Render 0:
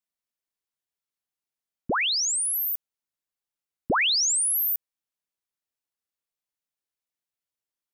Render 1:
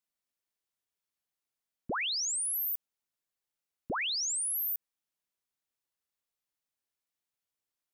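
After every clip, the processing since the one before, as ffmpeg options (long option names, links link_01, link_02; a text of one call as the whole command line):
ffmpeg -i in.wav -af "alimiter=level_in=5.5dB:limit=-24dB:level=0:latency=1,volume=-5.5dB" out.wav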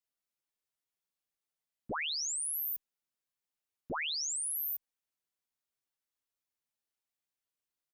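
ffmpeg -i in.wav -filter_complex "[0:a]asplit=2[link_01][link_02];[link_02]adelay=8.5,afreqshift=-0.79[link_03];[link_01][link_03]amix=inputs=2:normalize=1" out.wav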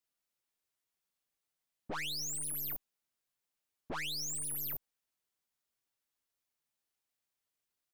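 ffmpeg -i in.wav -af "aeval=exprs='(tanh(141*val(0)+0.65)-tanh(0.65))/141':channel_layout=same,volume=6dB" out.wav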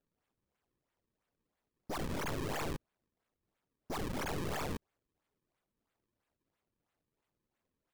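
ffmpeg -i in.wav -af "acrusher=samples=36:mix=1:aa=0.000001:lfo=1:lforange=57.6:lforate=3,volume=1dB" out.wav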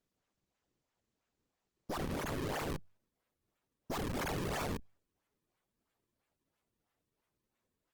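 ffmpeg -i in.wav -af "volume=1dB" -ar 48000 -c:a libopus -b:a 16k out.opus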